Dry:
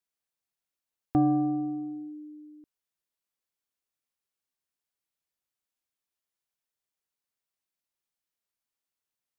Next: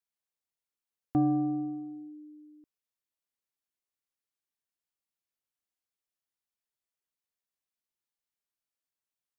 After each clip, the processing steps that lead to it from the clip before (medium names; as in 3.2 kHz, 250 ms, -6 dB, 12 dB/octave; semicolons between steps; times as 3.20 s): dynamic bell 190 Hz, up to +4 dB, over -34 dBFS, Q 0.76; trim -5 dB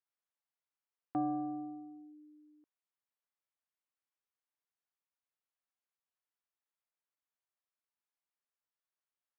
band-pass filter 1.1 kHz, Q 0.81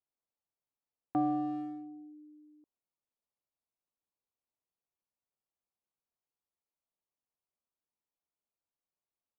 local Wiener filter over 25 samples; trim +4 dB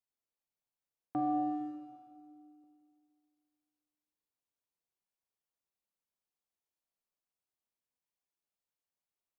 Schroeder reverb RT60 2.3 s, combs from 31 ms, DRR 2.5 dB; trim -4 dB